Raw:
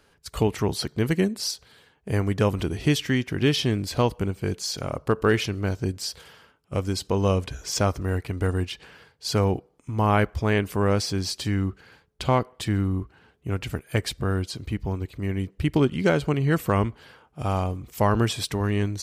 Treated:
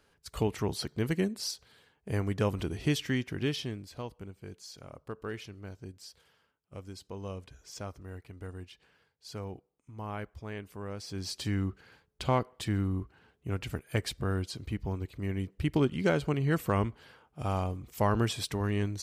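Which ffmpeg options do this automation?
-af "volume=5dB,afade=t=out:st=3.2:d=0.68:silence=0.281838,afade=t=in:st=10.99:d=0.44:silence=0.251189"

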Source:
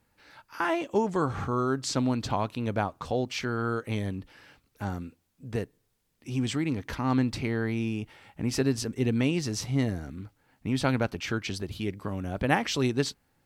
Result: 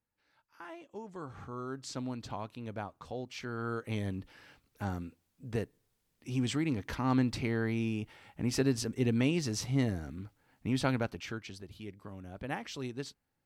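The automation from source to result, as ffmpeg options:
-af "volume=-3dB,afade=t=in:st=0.95:d=0.91:silence=0.398107,afade=t=in:st=3.3:d=0.88:silence=0.375837,afade=t=out:st=10.71:d=0.8:silence=0.316228"

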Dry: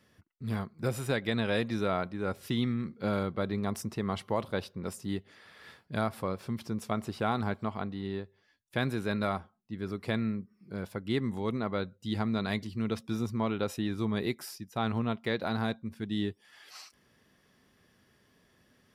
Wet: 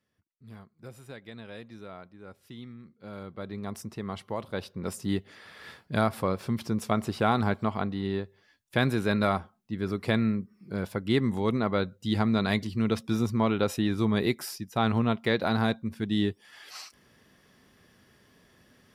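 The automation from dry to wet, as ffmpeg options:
-af "volume=5.5dB,afade=t=in:st=3.03:d=0.73:silence=0.281838,afade=t=in:st=4.45:d=0.64:silence=0.375837"

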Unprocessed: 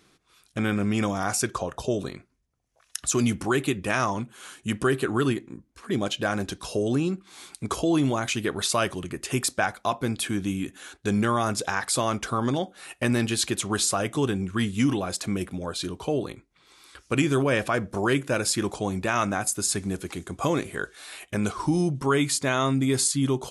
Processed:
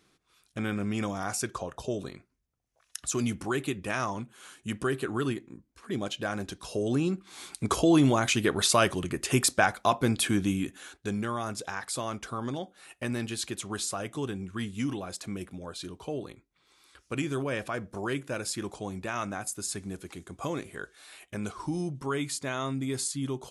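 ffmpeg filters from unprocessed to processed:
-af "volume=1.5dB,afade=t=in:st=6.64:d=0.96:silence=0.421697,afade=t=out:st=10.34:d=0.84:silence=0.316228"

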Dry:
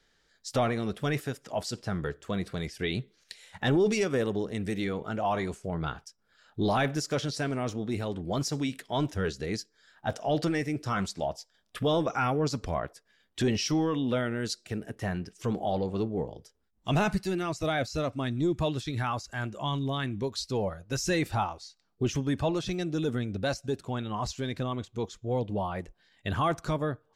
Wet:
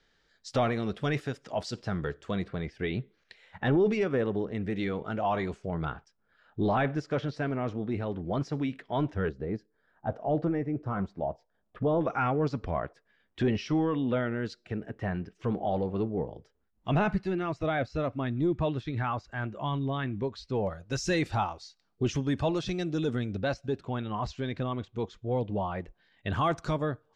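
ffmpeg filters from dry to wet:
-af "asetnsamples=n=441:p=0,asendcmd='2.44 lowpass f 2300;4.76 lowpass f 3800;5.85 lowpass f 2200;9.29 lowpass f 1000;12.01 lowpass f 2400;20.67 lowpass f 6000;23.38 lowpass f 3300;26.33 lowpass f 6400',lowpass=5.1k"

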